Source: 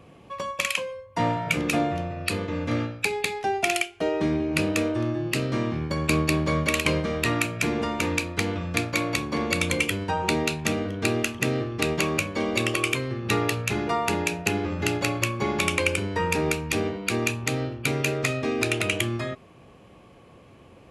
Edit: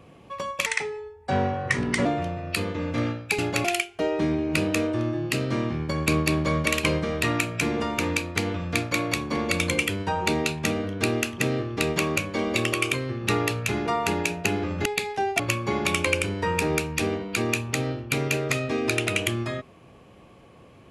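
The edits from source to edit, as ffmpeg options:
ffmpeg -i in.wav -filter_complex "[0:a]asplit=7[link_01][link_02][link_03][link_04][link_05][link_06][link_07];[link_01]atrim=end=0.664[link_08];[link_02]atrim=start=0.66:end=1.79,asetpts=PTS-STARTPTS,asetrate=35721,aresample=44100,atrim=end_sample=61522,asetpts=PTS-STARTPTS[link_09];[link_03]atrim=start=1.786:end=3.122[link_10];[link_04]atrim=start=14.868:end=15.132[link_11];[link_05]atrim=start=3.658:end=14.872[link_12];[link_06]atrim=start=3.118:end=3.662[link_13];[link_07]atrim=start=15.128[link_14];[link_08][link_09]acrossfade=duration=0.004:curve1=hsin:curve2=hsin[link_15];[link_15][link_10]acrossfade=duration=0.004:curve1=hsin:curve2=hsin[link_16];[link_16][link_11]acrossfade=duration=0.004:curve1=hsin:curve2=hsin[link_17];[link_17][link_12]acrossfade=duration=0.004:curve1=hsin:curve2=hsin[link_18];[link_18][link_13]acrossfade=duration=0.004:curve1=hsin:curve2=hsin[link_19];[link_19][link_14]acrossfade=duration=0.004:curve1=hsin:curve2=hsin" out.wav

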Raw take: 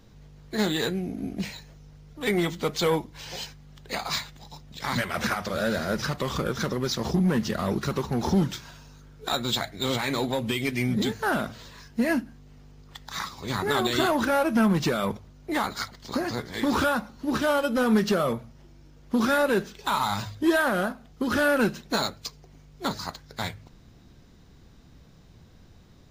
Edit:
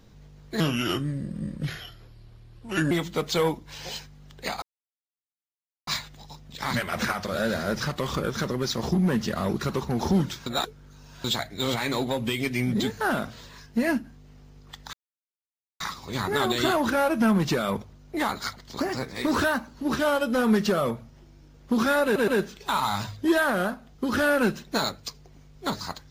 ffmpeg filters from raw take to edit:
ffmpeg -i in.wav -filter_complex "[0:a]asplit=11[link_01][link_02][link_03][link_04][link_05][link_06][link_07][link_08][link_09][link_10][link_11];[link_01]atrim=end=0.604[link_12];[link_02]atrim=start=0.6:end=2.38,asetpts=PTS-STARTPTS,asetrate=33957,aresample=44100,atrim=end_sample=101945,asetpts=PTS-STARTPTS[link_13];[link_03]atrim=start=2.376:end=4.09,asetpts=PTS-STARTPTS,afade=type=out:start_time=1.71:duration=0.004:curve=hsin,apad=pad_dur=1.25[link_14];[link_04]atrim=start=4.09:end=8.682,asetpts=PTS-STARTPTS,afade=type=in:duration=0.004:curve=hsin[link_15];[link_05]atrim=start=8.678:end=9.462,asetpts=PTS-STARTPTS,areverse[link_16];[link_06]atrim=start=9.458:end=13.15,asetpts=PTS-STARTPTS,afade=type=out:start_time=3.688:duration=0.004:curve=hsin,apad=pad_dur=0.87[link_17];[link_07]atrim=start=13.15:end=16.154,asetpts=PTS-STARTPTS,afade=type=in:duration=0.004:curve=hsin[link_18];[link_08]atrim=start=16.15:end=17.16,asetpts=PTS-STARTPTS,asetrate=47628,aresample=44100[link_19];[link_09]atrim=start=17.156:end=19.582[link_20];[link_10]atrim=start=19.458:end=19.582[link_21];[link_11]atrim=start=19.458[link_22];[link_12][link_13]acrossfade=duration=0.004:curve1=hsin:curve2=hsin[link_23];[link_14][link_15]concat=n=2:v=0:a=1[link_24];[link_23][link_24]acrossfade=duration=0.004:curve1=hsin:curve2=hsin[link_25];[link_25][link_16]acrossfade=duration=0.004:curve1=hsin:curve2=hsin[link_26];[link_17][link_18]concat=n=2:v=0:a=1[link_27];[link_26][link_27]acrossfade=duration=0.004:curve1=hsin:curve2=hsin[link_28];[link_28][link_19]acrossfade=duration=0.004:curve1=hsin:curve2=hsin[link_29];[link_29][link_20]acrossfade=duration=0.004:curve1=hsin:curve2=hsin[link_30];[link_30][link_21]acrossfade=duration=0.004:curve1=hsin:curve2=hsin[link_31];[link_31][link_22]acrossfade=duration=0.004:curve1=hsin:curve2=hsin" out.wav

